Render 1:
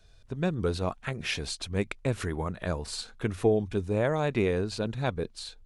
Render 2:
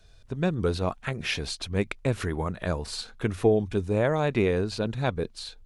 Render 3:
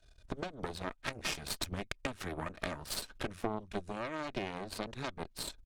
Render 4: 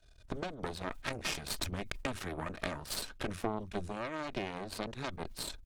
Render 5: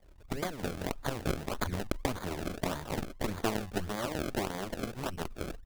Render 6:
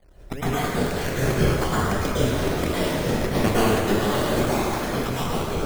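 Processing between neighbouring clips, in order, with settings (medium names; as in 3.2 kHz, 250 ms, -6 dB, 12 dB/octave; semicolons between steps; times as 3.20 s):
dynamic bell 8 kHz, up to -4 dB, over -52 dBFS, Q 1.7; trim +2.5 dB
comb 3.2 ms, depth 47%; compression 12:1, threshold -33 dBFS, peak gain reduction 16.5 dB; Chebyshev shaper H 3 -22 dB, 6 -14 dB, 7 -23 dB, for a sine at -20 dBFS; trim +2 dB
decay stretcher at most 97 dB/s
decimation with a swept rate 32×, swing 100% 1.7 Hz; trim +4 dB
random holes in the spectrogram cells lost 31%; plate-style reverb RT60 2 s, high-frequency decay 0.75×, pre-delay 95 ms, DRR -9.5 dB; trim +4 dB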